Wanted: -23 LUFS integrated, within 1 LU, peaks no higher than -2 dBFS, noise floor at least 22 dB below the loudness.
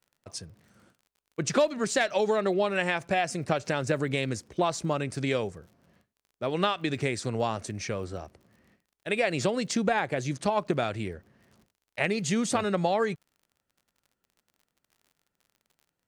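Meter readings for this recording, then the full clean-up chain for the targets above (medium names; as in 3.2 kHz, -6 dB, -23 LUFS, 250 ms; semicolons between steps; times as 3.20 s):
tick rate 47 per s; loudness -28.5 LUFS; peak level -12.0 dBFS; loudness target -23.0 LUFS
-> de-click; trim +5.5 dB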